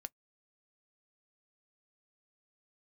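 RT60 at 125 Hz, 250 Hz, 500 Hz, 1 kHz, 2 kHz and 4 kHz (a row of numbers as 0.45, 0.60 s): 0.15, 0.10, 0.10, 0.10, 0.10, 0.10 s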